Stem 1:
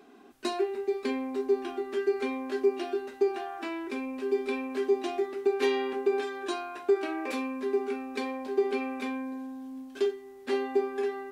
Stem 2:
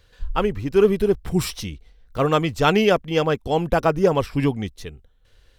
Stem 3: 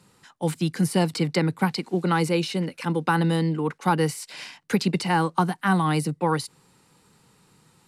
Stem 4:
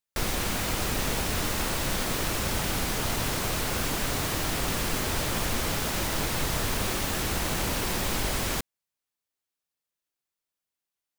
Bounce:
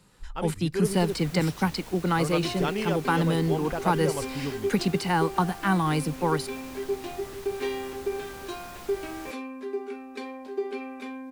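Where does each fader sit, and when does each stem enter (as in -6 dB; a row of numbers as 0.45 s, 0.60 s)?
-4.0 dB, -12.5 dB, -2.5 dB, -16.5 dB; 2.00 s, 0.00 s, 0.00 s, 0.70 s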